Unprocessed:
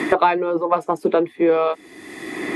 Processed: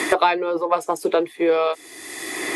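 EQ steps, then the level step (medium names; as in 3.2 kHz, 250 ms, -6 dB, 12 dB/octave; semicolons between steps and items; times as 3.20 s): dynamic bell 1 kHz, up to -3 dB, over -24 dBFS, Q 1; tone controls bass -5 dB, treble +12 dB; peaking EQ 210 Hz -9.5 dB 1.1 oct; +1.5 dB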